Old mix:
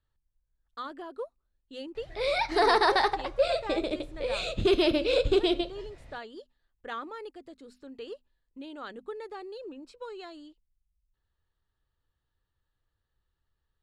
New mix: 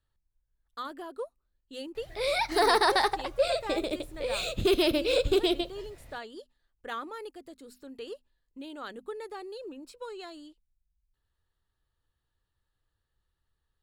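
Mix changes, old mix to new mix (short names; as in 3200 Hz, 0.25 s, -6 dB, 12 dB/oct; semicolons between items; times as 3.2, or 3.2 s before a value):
background: send -6.5 dB; master: remove air absorption 77 m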